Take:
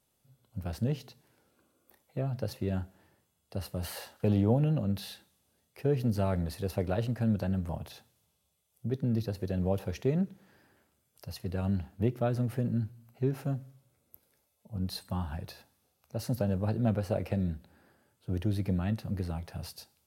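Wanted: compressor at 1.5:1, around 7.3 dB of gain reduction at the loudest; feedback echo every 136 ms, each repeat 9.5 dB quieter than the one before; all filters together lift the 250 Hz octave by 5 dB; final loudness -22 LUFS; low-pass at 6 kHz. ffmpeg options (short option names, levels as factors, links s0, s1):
-af "lowpass=6000,equalizer=f=250:t=o:g=6.5,acompressor=threshold=0.0112:ratio=1.5,aecho=1:1:136|272|408|544:0.335|0.111|0.0365|0.012,volume=4.73"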